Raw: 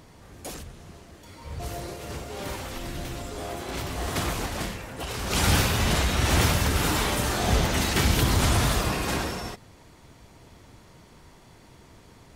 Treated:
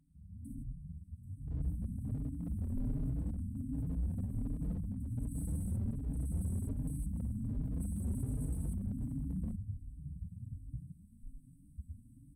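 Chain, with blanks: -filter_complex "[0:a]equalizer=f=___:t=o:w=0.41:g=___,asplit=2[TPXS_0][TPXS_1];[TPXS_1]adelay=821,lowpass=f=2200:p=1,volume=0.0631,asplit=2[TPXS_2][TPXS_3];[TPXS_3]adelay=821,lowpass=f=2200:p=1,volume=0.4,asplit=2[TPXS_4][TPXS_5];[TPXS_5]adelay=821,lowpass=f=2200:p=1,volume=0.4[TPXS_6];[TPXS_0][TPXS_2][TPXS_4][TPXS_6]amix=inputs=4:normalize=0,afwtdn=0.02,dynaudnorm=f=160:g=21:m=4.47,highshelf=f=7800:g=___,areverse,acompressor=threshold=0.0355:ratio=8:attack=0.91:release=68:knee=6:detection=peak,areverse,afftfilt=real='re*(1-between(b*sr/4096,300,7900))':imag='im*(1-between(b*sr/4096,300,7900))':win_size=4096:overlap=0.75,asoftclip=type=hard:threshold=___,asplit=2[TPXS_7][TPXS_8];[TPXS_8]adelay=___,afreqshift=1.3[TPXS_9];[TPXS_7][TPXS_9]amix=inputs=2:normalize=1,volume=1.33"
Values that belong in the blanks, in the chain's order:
5000, 9.5, -11.5, 0.0282, 4.4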